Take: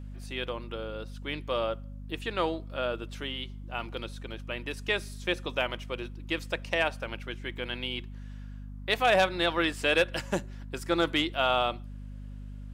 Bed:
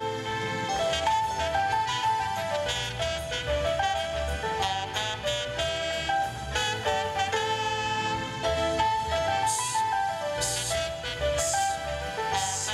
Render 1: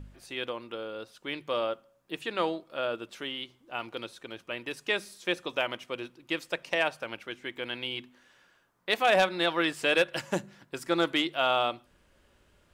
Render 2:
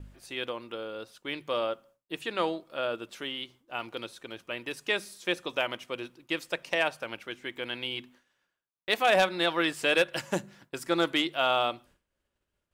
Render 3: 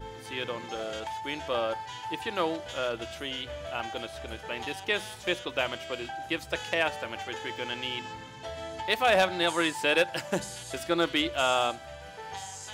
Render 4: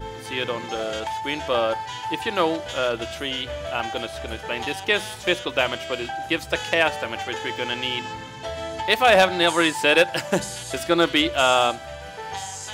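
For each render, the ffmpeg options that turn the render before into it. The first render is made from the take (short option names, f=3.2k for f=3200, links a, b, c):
-af "bandreject=f=50:t=h:w=4,bandreject=f=100:t=h:w=4,bandreject=f=150:t=h:w=4,bandreject=f=200:t=h:w=4,bandreject=f=250:t=h:w=4"
-af "agate=range=-33dB:threshold=-51dB:ratio=3:detection=peak,highshelf=f=7.6k:g=4"
-filter_complex "[1:a]volume=-12dB[a];[0:a][a]amix=inputs=2:normalize=0"
-af "volume=7.5dB"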